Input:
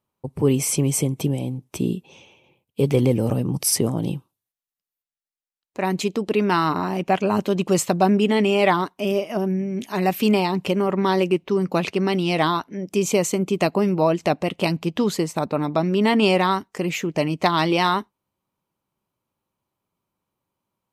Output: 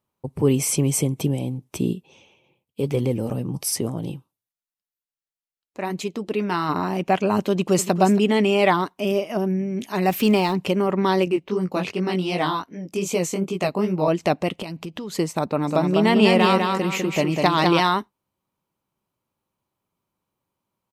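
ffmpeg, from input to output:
-filter_complex "[0:a]asplit=3[a][b][c];[a]afade=t=out:st=1.92:d=0.02[d];[b]flanger=delay=1.5:depth=5:regen=-75:speed=1:shape=triangular,afade=t=in:st=1.92:d=0.02,afade=t=out:st=6.68:d=0.02[e];[c]afade=t=in:st=6.68:d=0.02[f];[d][e][f]amix=inputs=3:normalize=0,asplit=2[g][h];[h]afade=t=in:st=7.5:d=0.01,afade=t=out:st=7.9:d=0.01,aecho=0:1:280|560:0.251189|0.0251189[i];[g][i]amix=inputs=2:normalize=0,asettb=1/sr,asplit=3[j][k][l];[j]atrim=end=10.084[m];[k]atrim=start=10.08:end=10.53,asetpts=PTS-STARTPTS,afade=t=in:d=0.004:c=qsin,afade=t=out:st=0.446:d=0.004:c=qsin,aeval=exprs='val(0)+0.5*0.0178*sgn(val(0))':c=same[n];[l]atrim=start=10.526[o];[m][n]acrossfade=d=0.004:c1=hsin:c2=qsin[p];[p][o]acrossfade=d=0.004:c1=qsin:c2=hsin,asettb=1/sr,asplit=3[q][r][s];[q]atrim=end=11.254[t];[r]atrim=start=11.25:end=14.08,asetpts=PTS-STARTPTS,afade=t=in:d=0.004:c=qsin,afade=t=out:st=2.826:d=0.004:c=qsin,flanger=delay=16.5:depth=5.4:speed=2.6[u];[s]atrim=start=14.076[v];[t][u]acrossfade=d=0.004:c1=hsin:c2=qsin[w];[w][v]acrossfade=d=0.004:c1=qsin:c2=hsin,asettb=1/sr,asplit=3[x][y][z];[x]atrim=end=14.624[aa];[y]atrim=start=14.62:end=15.15,asetpts=PTS-STARTPTS,afade=t=in:d=0.004:c=qsin,afade=t=out:st=0.526:d=0.004:c=qsin,acompressor=threshold=-28dB:ratio=10:attack=3.2:release=140:knee=1:detection=peak[ab];[z]atrim=start=15.146[ac];[aa][ab]acrossfade=d=0.004:c1=hsin:c2=qsin[ad];[ad][ac]acrossfade=d=0.004:c1=qsin:c2=hsin,asplit=3[ae][af][ag];[ae]afade=t=out:st=15.66:d=0.02[ah];[af]aecho=1:1:200|400|600|800:0.668|0.227|0.0773|0.0263,afade=t=in:st=15.66:d=0.02,afade=t=out:st=17.79:d=0.02[ai];[ag]afade=t=in:st=17.79:d=0.02[aj];[ah][ai][aj]amix=inputs=3:normalize=0"

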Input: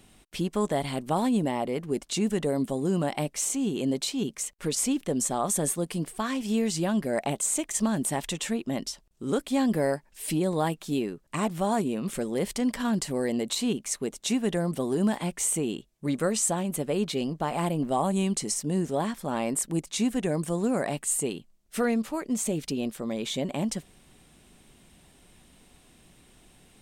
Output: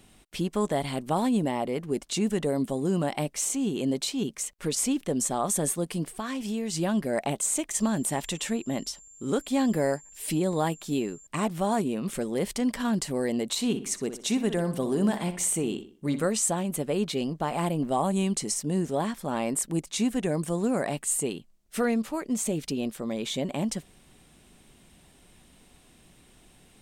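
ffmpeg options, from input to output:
-filter_complex "[0:a]asettb=1/sr,asplit=3[a][b][c];[a]atrim=end=6.164[d];[b]atrim=start=6.16:end=6.73,asetpts=PTS-STARTPTS,afade=t=in:d=0.004:c=qsin,afade=t=out:st=0.566:d=0.004:c=qsin,acompressor=threshold=-29dB:ratio=2.5:attack=3.2:release=140:knee=1:detection=peak[e];[c]atrim=start=6.726[f];[d][e]acrossfade=d=0.004:c1=hsin:c2=qsin[g];[g][f]acrossfade=d=0.004:c1=qsin:c2=hsin,asettb=1/sr,asplit=3[h][i][j];[h]atrim=end=7.774[k];[i]atrim=start=7.77:end=11.27,asetpts=PTS-STARTPTS,afade=t=in:d=0.004:c=qsin,afade=t=out:st=3.496:d=0.004:c=qsin,aeval=exprs='val(0)+0.00355*sin(2*PI*7300*n/s)':c=same[l];[j]atrim=start=11.266[m];[k][l]acrossfade=d=0.004:c1=hsin:c2=qsin[n];[n][m]acrossfade=d=0.004:c1=qsin:c2=hsin,asettb=1/sr,asplit=3[o][p][q];[o]atrim=end=13.504[r];[p]atrim=start=13.5:end=16.25,asetpts=PTS-STARTPTS,afade=t=in:d=0.004:c=qsin,afade=t=out:st=2.746:d=0.004:c=qsin,asplit=2[s][t];[t]adelay=62,lowpass=f=3.7k:p=1,volume=-10dB,asplit=2[u][v];[v]adelay=62,lowpass=f=3.7k:p=1,volume=0.41,asplit=2[w][x];[x]adelay=62,lowpass=f=3.7k:p=1,volume=0.41,asplit=2[y][z];[z]adelay=62,lowpass=f=3.7k:p=1,volume=0.41[aa];[s][u][w][y][aa]amix=inputs=5:normalize=0,atrim=end_sample=121275[ab];[q]atrim=start=16.246[ac];[r][ab]acrossfade=d=0.004:c1=hsin:c2=qsin[ad];[ad][ac]acrossfade=d=0.004:c1=qsin:c2=hsin"

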